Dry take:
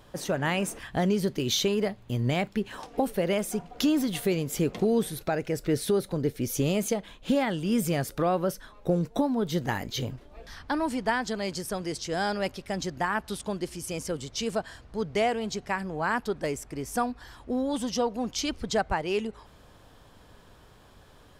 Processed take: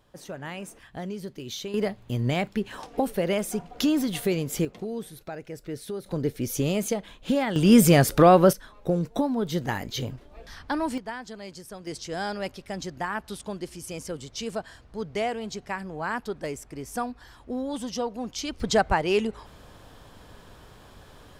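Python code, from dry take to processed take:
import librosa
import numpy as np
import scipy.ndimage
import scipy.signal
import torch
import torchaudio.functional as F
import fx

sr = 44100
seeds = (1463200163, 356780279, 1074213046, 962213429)

y = fx.gain(x, sr, db=fx.steps((0.0, -9.5), (1.74, 1.0), (4.65, -9.0), (6.06, 0.5), (7.56, 10.5), (8.53, 0.5), (10.98, -9.0), (11.87, -2.5), (18.6, 5.0)))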